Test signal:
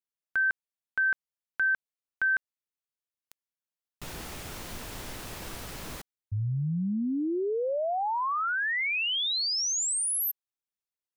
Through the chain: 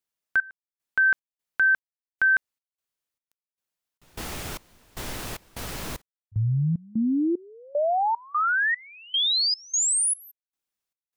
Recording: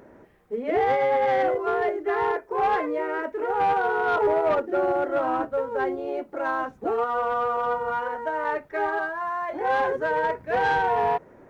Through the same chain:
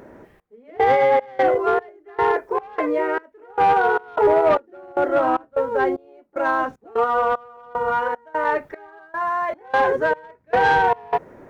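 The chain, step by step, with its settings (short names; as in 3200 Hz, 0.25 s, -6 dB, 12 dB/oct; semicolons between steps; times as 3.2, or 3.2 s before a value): step gate "xxxx....xxxx.." 151 bpm -24 dB; gain +6 dB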